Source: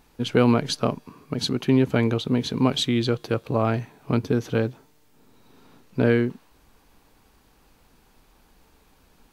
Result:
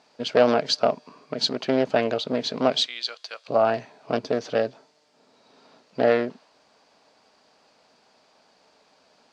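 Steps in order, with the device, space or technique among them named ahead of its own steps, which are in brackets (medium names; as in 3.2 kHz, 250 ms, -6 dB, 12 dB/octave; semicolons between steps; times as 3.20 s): 2.86–3.48 s: Bessel high-pass 1.9 kHz, order 2; full-range speaker at full volume (loudspeaker Doppler distortion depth 0.41 ms; cabinet simulation 280–7200 Hz, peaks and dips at 330 Hz -6 dB, 630 Hz +10 dB, 4.7 kHz +8 dB)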